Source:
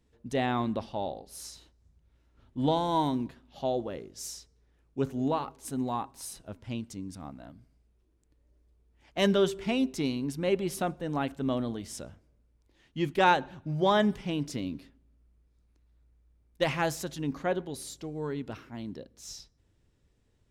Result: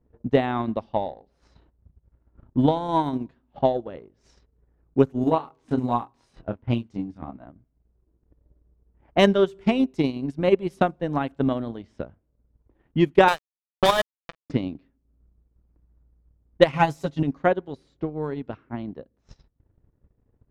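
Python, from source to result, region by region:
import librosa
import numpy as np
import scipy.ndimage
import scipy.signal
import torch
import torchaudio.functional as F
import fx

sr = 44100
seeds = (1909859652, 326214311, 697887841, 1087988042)

y = fx.chain(x, sr, fx.block_float(bits=7),
    fx.doubler(ms=25.0, db=-3.5), at=(5.21, 7.45))
y = fx.chain(y, sr, fx.riaa(side='recording'),
    fx.sample_gate(floor_db=-23.5),
    fx.comb(ms=1.7, depth=0.33), at=(13.28, 14.5))
y = fx.chain(y, sr, fx.notch(hz=1700.0, q=6.9),
    fx.comb(ms=7.1, depth=0.99), at=(16.72, 17.23))
y = fx.env_lowpass(y, sr, base_hz=1200.0, full_db=-26.5)
y = fx.high_shelf(y, sr, hz=3200.0, db=-11.0)
y = fx.transient(y, sr, attack_db=11, sustain_db=-10)
y = y * librosa.db_to_amplitude(3.0)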